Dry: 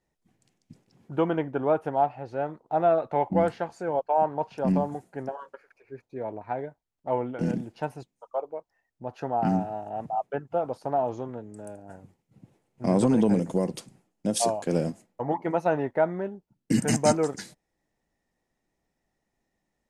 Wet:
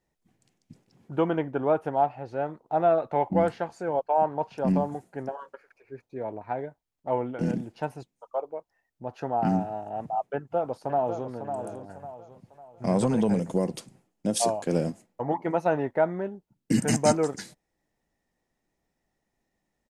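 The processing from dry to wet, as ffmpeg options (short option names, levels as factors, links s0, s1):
-filter_complex "[0:a]asplit=2[s0][s1];[s1]afade=t=in:st=10.34:d=0.01,afade=t=out:st=11.3:d=0.01,aecho=0:1:550|1100|1650|2200|2750:0.421697|0.168679|0.0674714|0.0269886|0.0107954[s2];[s0][s2]amix=inputs=2:normalize=0,asettb=1/sr,asplit=3[s3][s4][s5];[s3]atrim=end=11.944[s6];[s4]atrim=start=11.94:end=13.5,asetpts=PTS-STARTPTS,afade=t=in:d=0.004:c=qsin,afade=t=out:st=1.556:d=0.004:c=qsin,equalizer=f=300:w=2.5:g=-7.5[s7];[s5]atrim=start=13.496[s8];[s6][s7]acrossfade=d=0.004:c1=hsin:c2=qsin[s9];[s9][s8]acrossfade=d=0.004:c1=qsin:c2=hsin"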